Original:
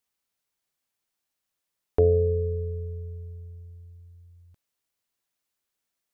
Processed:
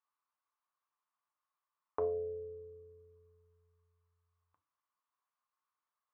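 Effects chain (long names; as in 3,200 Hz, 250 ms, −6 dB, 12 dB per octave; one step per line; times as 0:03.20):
resonant band-pass 1,100 Hz, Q 7.4
feedback delay network reverb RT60 0.31 s, low-frequency decay 1.5×, high-frequency decay 1×, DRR 7 dB
level +9.5 dB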